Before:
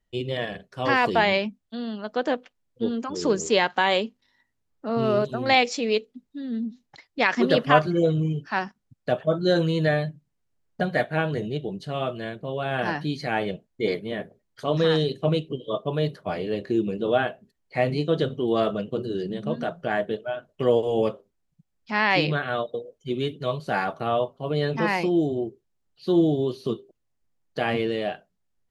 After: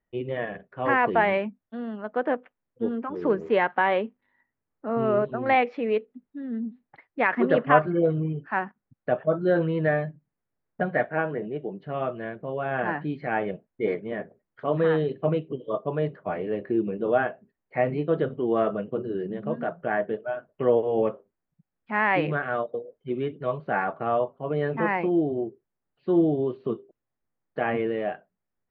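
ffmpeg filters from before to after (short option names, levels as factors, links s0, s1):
-filter_complex "[0:a]asettb=1/sr,asplit=3[s0][s1][s2];[s0]atrim=end=11.094[s3];[s1]atrim=start=11.09:end=11.82,asetpts=PTS-STARTPTS,afade=t=in:d=0.004:c=qsin,afade=t=out:st=0.726:d=0.004:c=qsin,highpass=180,lowpass=3000[s4];[s2]atrim=start=11.816[s5];[s3][s4]acrossfade=d=0.004:c1=hsin:c2=qsin[s6];[s6][s5]acrossfade=d=0.004:c1=qsin:c2=hsin,lowpass=f=2100:w=0.5412,lowpass=f=2100:w=1.3066,lowshelf=f=110:g=-10.5"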